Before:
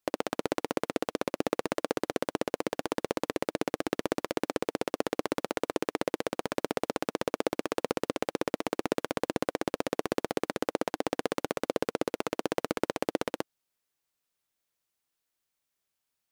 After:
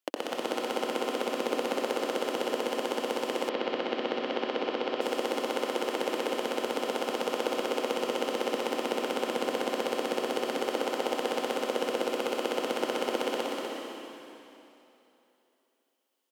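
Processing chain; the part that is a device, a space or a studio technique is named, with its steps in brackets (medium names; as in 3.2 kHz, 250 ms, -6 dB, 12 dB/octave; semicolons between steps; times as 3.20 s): stadium PA (high-pass 220 Hz 24 dB/octave; peaking EQ 3 kHz +8 dB 0.28 oct; loudspeakers at several distances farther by 62 m -12 dB, 84 m -6 dB; reverberation RT60 3.1 s, pre-delay 83 ms, DRR -1.5 dB); 3.49–5.01 s: low-pass 4.4 kHz 24 dB/octave; trim -3.5 dB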